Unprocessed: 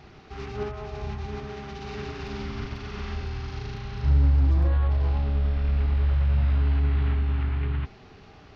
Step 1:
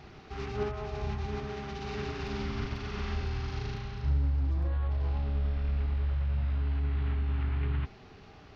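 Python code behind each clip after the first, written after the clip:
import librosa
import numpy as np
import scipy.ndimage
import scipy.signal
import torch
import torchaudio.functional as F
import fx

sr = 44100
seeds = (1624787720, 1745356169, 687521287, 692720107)

y = fx.rider(x, sr, range_db=4, speed_s=0.5)
y = y * 10.0 ** (-5.0 / 20.0)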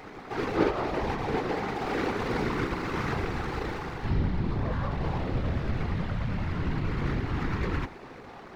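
y = scipy.ndimage.median_filter(x, 15, mode='constant')
y = fx.graphic_eq_10(y, sr, hz=(125, 250, 500, 1000, 2000, 4000), db=(-11, 9, 4, 7, 9, 8))
y = fx.whisperise(y, sr, seeds[0])
y = y * 10.0 ** (2.5 / 20.0)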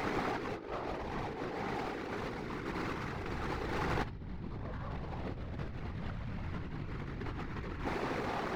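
y = fx.over_compress(x, sr, threshold_db=-39.0, ratio=-1.0)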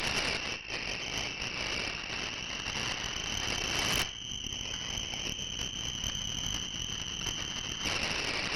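y = fx.freq_invert(x, sr, carrier_hz=3100)
y = fx.rev_schroeder(y, sr, rt60_s=0.74, comb_ms=26, drr_db=11.0)
y = fx.cheby_harmonics(y, sr, harmonics=(6,), levels_db=(-9,), full_scale_db=-19.0)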